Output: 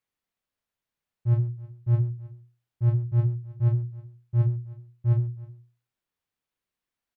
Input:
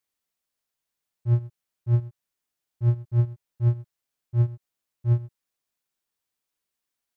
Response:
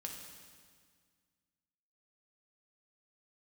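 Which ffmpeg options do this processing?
-filter_complex "[0:a]bass=f=250:g=5,treble=f=4000:g=-9,bandreject=f=60:t=h:w=6,bandreject=f=120:t=h:w=6,bandreject=f=180:t=h:w=6,bandreject=f=240:t=h:w=6,bandreject=f=300:t=h:w=6,bandreject=f=360:t=h:w=6,asplit=2[s0][s1];[s1]aecho=0:1:315:0.1[s2];[s0][s2]amix=inputs=2:normalize=0"

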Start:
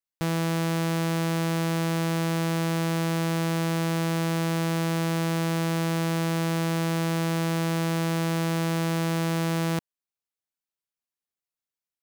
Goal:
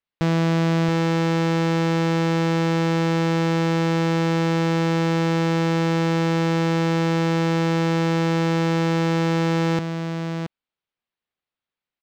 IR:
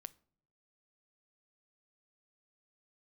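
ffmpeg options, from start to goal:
-af "lowpass=f=3900:w=0.5412,lowpass=f=3900:w=1.3066,asoftclip=type=hard:threshold=0.0708,aecho=1:1:675:0.422,volume=2.24"

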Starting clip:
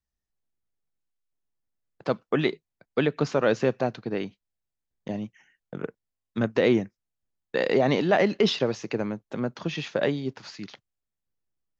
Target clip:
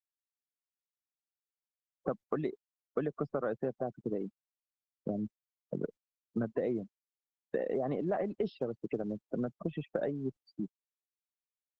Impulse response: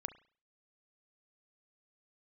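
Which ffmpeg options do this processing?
-af "highpass=100,bandreject=f=910:w=5.5,afftfilt=real='re*gte(hypot(re,im),0.0447)':imag='im*gte(hypot(re,im),0.0447)':win_size=1024:overlap=0.75,highshelf=f=1700:t=q:w=1.5:g=-12,acompressor=threshold=0.0158:ratio=5,volume=1.58" -ar 48000 -c:a libopus -b:a 12k

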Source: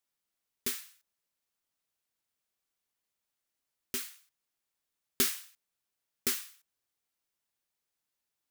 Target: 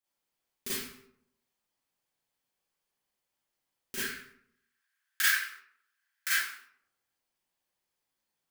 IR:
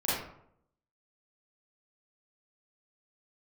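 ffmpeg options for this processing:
-filter_complex "[0:a]asettb=1/sr,asplit=3[s0][s1][s2];[s0]atrim=end=3.964[s3];[s1]atrim=start=3.96:end=6.34,asetpts=PTS-STARTPTS,afade=t=in:d=0.004:c=qsin,afade=t=out:st=2.376:d=0.004:c=qsin,highpass=f=1600:t=q:w=6.9[s4];[s2]atrim=start=6.336[s5];[s3][s4]acrossfade=d=0.004:c1=hsin:c2=qsin[s6];[s6][s5]acrossfade=d=0.004:c1=qsin:c2=hsin[s7];[1:a]atrim=start_sample=2205[s8];[s7][s8]afir=irnorm=-1:irlink=0,volume=0.531"

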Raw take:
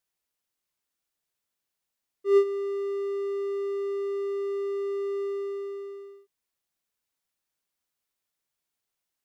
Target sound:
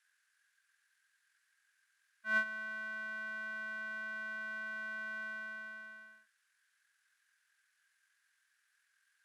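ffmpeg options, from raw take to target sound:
-af "asetrate=24046,aresample=44100,atempo=1.83401,highpass=f=1600:t=q:w=13,volume=1.5"

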